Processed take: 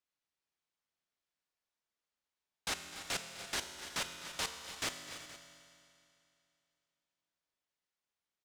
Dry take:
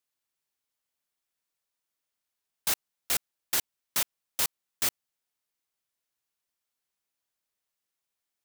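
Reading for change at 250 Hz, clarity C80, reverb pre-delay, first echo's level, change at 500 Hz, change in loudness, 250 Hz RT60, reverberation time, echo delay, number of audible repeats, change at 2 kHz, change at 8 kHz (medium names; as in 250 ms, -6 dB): -1.5 dB, 6.0 dB, 5 ms, -16.0 dB, -2.0 dB, -10.0 dB, 2.5 s, 2.6 s, 254 ms, 4, -2.5 dB, -9.5 dB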